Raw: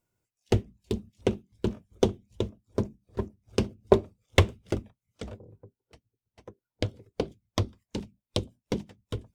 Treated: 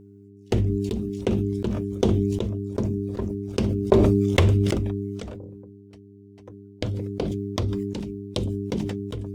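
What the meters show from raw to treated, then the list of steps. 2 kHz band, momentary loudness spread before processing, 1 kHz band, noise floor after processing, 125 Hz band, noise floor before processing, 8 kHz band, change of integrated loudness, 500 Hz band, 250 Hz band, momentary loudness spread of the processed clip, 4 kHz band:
+0.5 dB, 15 LU, +1.5 dB, -48 dBFS, +8.0 dB, under -85 dBFS, +1.5 dB, +6.0 dB, +4.0 dB, +8.5 dB, 13 LU, +1.0 dB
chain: hum notches 50/100 Hz; mains buzz 100 Hz, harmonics 4, -48 dBFS -1 dB/octave; decay stretcher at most 23 dB/s

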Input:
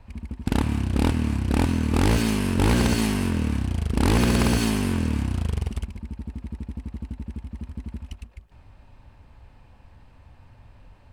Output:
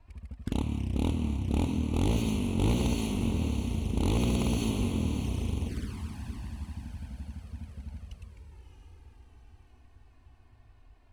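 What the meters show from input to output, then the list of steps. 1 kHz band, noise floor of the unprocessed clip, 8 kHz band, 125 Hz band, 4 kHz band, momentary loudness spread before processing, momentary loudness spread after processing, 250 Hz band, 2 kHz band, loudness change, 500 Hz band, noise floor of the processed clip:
-10.0 dB, -52 dBFS, -9.0 dB, -6.0 dB, -8.0 dB, 16 LU, 15 LU, -6.5 dB, -13.0 dB, -7.0 dB, -7.0 dB, -58 dBFS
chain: echo that smears into a reverb 640 ms, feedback 55%, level -8 dB; touch-sensitive flanger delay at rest 3.2 ms, full sweep at -19.5 dBFS; trim -7 dB

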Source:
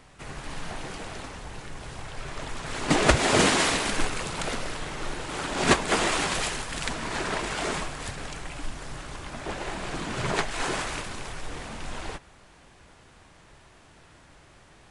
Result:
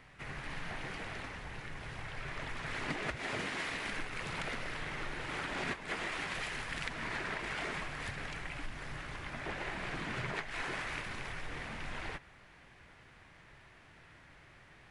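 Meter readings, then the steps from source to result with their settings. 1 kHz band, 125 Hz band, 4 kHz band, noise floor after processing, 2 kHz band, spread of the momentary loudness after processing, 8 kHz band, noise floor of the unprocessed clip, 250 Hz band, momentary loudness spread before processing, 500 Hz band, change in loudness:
-12.0 dB, -10.5 dB, -13.0 dB, -59 dBFS, -7.5 dB, 21 LU, -20.0 dB, -54 dBFS, -14.0 dB, 18 LU, -14.5 dB, -11.5 dB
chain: graphic EQ 125/2000/8000 Hz +4/+9/-7 dB; compression 12:1, threshold -27 dBFS, peak gain reduction 17.5 dB; trim -7.5 dB

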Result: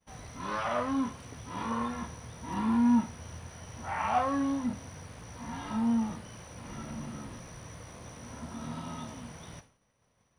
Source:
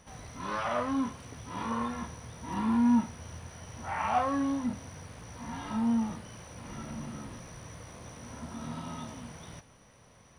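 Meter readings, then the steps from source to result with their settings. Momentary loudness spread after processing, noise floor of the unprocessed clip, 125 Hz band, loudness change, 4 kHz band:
18 LU, -58 dBFS, 0.0 dB, 0.0 dB, 0.0 dB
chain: expander -48 dBFS

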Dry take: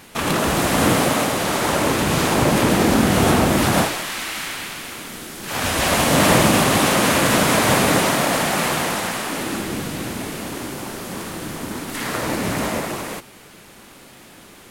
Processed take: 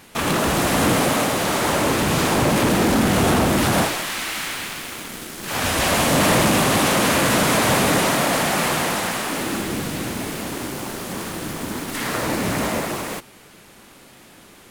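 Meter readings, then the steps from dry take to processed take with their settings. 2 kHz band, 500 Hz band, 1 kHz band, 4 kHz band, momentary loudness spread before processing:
-0.5 dB, -1.0 dB, -1.0 dB, -0.5 dB, 14 LU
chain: in parallel at -6.5 dB: bit crusher 5-bit; on the sum: saturation -8.5 dBFS, distortion -15 dB; trim -2.5 dB

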